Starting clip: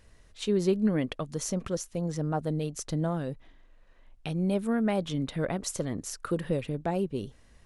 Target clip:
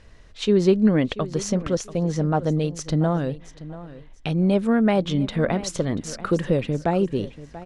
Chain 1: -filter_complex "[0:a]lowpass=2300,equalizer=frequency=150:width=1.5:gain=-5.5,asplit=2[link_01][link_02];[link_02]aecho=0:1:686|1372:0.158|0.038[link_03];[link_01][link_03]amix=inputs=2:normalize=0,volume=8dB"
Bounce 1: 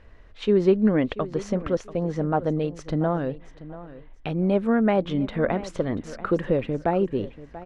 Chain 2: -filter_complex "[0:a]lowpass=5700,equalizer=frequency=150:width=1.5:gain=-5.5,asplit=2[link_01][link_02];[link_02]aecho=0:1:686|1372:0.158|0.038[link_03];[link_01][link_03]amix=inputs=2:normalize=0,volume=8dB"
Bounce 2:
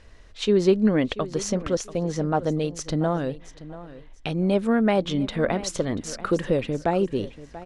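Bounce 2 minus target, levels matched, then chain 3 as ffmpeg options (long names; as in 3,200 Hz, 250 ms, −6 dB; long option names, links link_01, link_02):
125 Hz band −3.0 dB
-filter_complex "[0:a]lowpass=5700,asplit=2[link_01][link_02];[link_02]aecho=0:1:686|1372:0.158|0.038[link_03];[link_01][link_03]amix=inputs=2:normalize=0,volume=8dB"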